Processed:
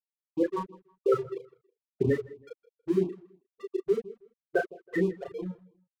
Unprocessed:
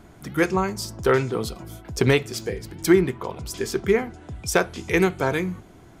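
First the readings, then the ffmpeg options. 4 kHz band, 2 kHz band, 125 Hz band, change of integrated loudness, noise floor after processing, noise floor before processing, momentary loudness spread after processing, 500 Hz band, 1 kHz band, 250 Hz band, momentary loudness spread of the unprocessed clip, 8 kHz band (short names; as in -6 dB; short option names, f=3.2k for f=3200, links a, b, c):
under -20 dB, -13.5 dB, -11.0 dB, -7.5 dB, under -85 dBFS, -48 dBFS, 17 LU, -6.5 dB, -11.5 dB, -8.0 dB, 13 LU, under -25 dB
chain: -filter_complex "[0:a]afftfilt=real='re*gte(hypot(re,im),0.501)':imag='im*gte(hypot(re,im),0.501)':win_size=1024:overlap=0.75,lowshelf=f=240:g=-7.5,asplit=2[a][b];[b]acompressor=threshold=-36dB:ratio=6,volume=-2.5dB[c];[a][c]amix=inputs=2:normalize=0,aeval=exprs='sgn(val(0))*max(abs(val(0))-0.00891,0)':c=same,asplit=2[d][e];[e]adelay=33,volume=-4dB[f];[d][f]amix=inputs=2:normalize=0,asplit=2[g][h];[h]adelay=161,lowpass=f=3.9k:p=1,volume=-20dB,asplit=2[i][j];[j]adelay=161,lowpass=f=3.9k:p=1,volume=0.26[k];[g][i][k]amix=inputs=3:normalize=0,afftfilt=real='re*(1-between(b*sr/1024,220*pow(1700/220,0.5+0.5*sin(2*PI*3*pts/sr))/1.41,220*pow(1700/220,0.5+0.5*sin(2*PI*3*pts/sr))*1.41))':imag='im*(1-between(b*sr/1024,220*pow(1700/220,0.5+0.5*sin(2*PI*3*pts/sr))/1.41,220*pow(1700/220,0.5+0.5*sin(2*PI*3*pts/sr))*1.41))':win_size=1024:overlap=0.75,volume=-3.5dB"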